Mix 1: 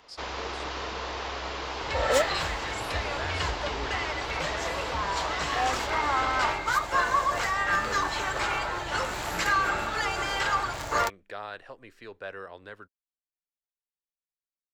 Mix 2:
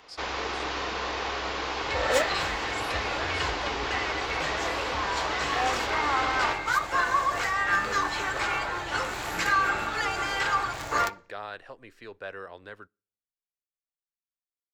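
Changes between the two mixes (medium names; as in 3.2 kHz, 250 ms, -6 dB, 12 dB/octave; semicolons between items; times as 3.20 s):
second sound -3.5 dB; reverb: on, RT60 0.50 s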